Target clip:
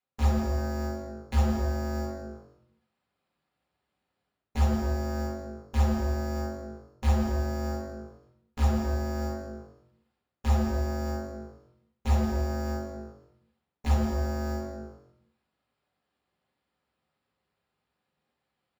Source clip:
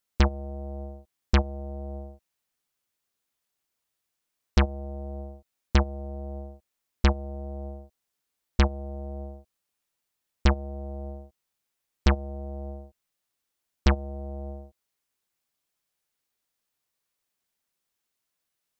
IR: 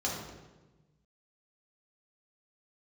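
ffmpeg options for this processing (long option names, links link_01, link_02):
-filter_complex "[0:a]highshelf=frequency=2900:gain=4,areverse,acompressor=threshold=-35dB:ratio=8,areverse,asetrate=46722,aresample=44100,atempo=0.943874,acrossover=split=310|1300[link_01][link_02][link_03];[link_03]asoftclip=type=tanh:threshold=-38dB[link_04];[link_01][link_02][link_04]amix=inputs=3:normalize=0,acrusher=samples=7:mix=1:aa=0.000001,aeval=exprs='0.0531*(cos(1*acos(clip(val(0)/0.0531,-1,1)))-cos(1*PI/2))+0.00944*(cos(5*acos(clip(val(0)/0.0531,-1,1)))-cos(5*PI/2))+0.0168*(cos(7*acos(clip(val(0)/0.0531,-1,1)))-cos(7*PI/2))':channel_layout=same,asplit=4[link_05][link_06][link_07][link_08];[link_06]adelay=161,afreqshift=-100,volume=-14dB[link_09];[link_07]adelay=322,afreqshift=-200,volume=-24.2dB[link_10];[link_08]adelay=483,afreqshift=-300,volume=-34.3dB[link_11];[link_05][link_09][link_10][link_11]amix=inputs=4:normalize=0[link_12];[1:a]atrim=start_sample=2205,afade=type=out:start_time=0.45:duration=0.01,atrim=end_sample=20286[link_13];[link_12][link_13]afir=irnorm=-1:irlink=0"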